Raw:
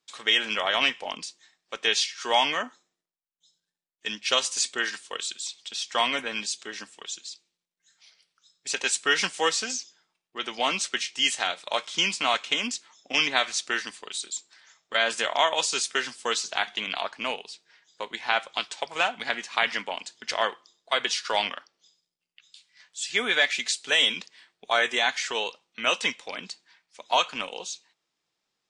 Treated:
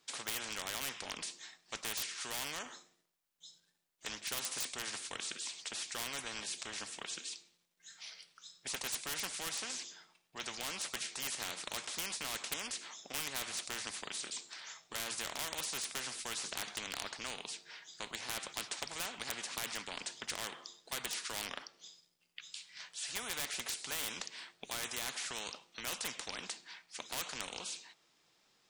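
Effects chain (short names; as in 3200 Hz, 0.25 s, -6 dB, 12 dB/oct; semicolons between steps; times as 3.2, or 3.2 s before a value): overloaded stage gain 17 dB; spectral compressor 4:1; gain +1 dB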